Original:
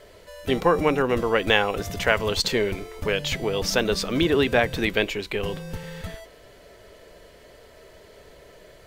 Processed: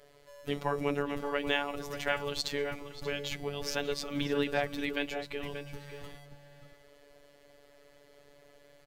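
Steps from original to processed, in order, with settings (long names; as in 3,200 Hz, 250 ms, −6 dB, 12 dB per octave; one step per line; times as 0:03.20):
phases set to zero 143 Hz
slap from a distant wall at 100 metres, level −8 dB
level −8.5 dB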